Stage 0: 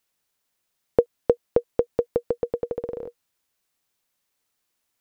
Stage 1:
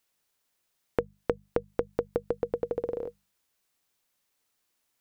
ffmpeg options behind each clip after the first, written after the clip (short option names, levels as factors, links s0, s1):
-af "acompressor=threshold=0.0631:ratio=6,bandreject=f=50:t=h:w=6,bandreject=f=100:t=h:w=6,bandreject=f=150:t=h:w=6,bandreject=f=200:t=h:w=6"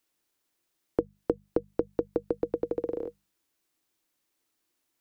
-filter_complex "[0:a]equalizer=f=320:w=3.4:g=11.5,acrossover=split=330|1100[s0][s1][s2];[s2]asoftclip=type=tanh:threshold=0.0141[s3];[s0][s1][s3]amix=inputs=3:normalize=0,volume=0.794"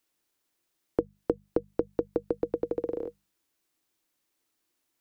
-af anull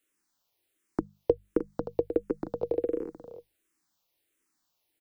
-filter_complex "[0:a]aecho=1:1:308:0.335,asplit=2[s0][s1];[s1]afreqshift=-1.4[s2];[s0][s2]amix=inputs=2:normalize=1,volume=1.41"